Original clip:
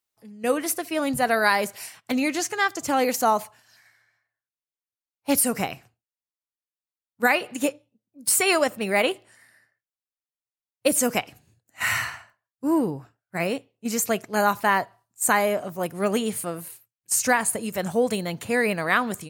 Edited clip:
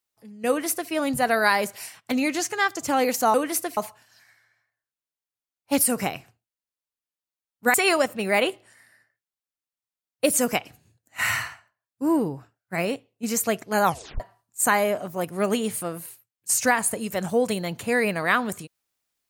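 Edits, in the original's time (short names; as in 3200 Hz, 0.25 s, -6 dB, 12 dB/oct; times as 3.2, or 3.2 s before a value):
0.48–0.91 copy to 3.34
7.31–8.36 cut
11.91–12.65 dip -8 dB, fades 0.31 s equal-power
14.46 tape stop 0.36 s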